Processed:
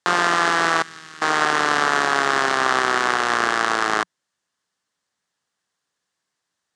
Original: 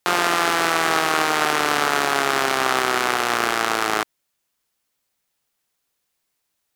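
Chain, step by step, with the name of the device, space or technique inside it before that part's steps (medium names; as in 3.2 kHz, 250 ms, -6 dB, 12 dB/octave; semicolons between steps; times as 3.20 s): car door speaker (cabinet simulation 87–8200 Hz, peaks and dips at 180 Hz +4 dB, 1.1 kHz +4 dB, 1.7 kHz +6 dB, 2.4 kHz -5 dB); 0.82–1.22 s: amplifier tone stack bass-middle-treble 6-0-2; trim -1 dB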